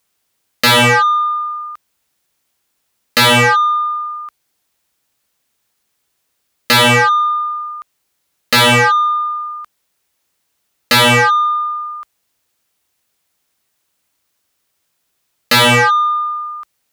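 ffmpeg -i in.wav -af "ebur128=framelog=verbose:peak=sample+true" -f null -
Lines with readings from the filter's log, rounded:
Integrated loudness:
  I:         -12.3 LUFS
  Threshold: -25.8 LUFS
Loudness range:
  LRA:         6.2 LU
  Threshold: -36.1 LUFS
  LRA low:   -19.5 LUFS
  LRA high:  -13.4 LUFS
Sample peak:
  Peak:       -8.5 dBFS
True peak:
  Peak:       -6.3 dBFS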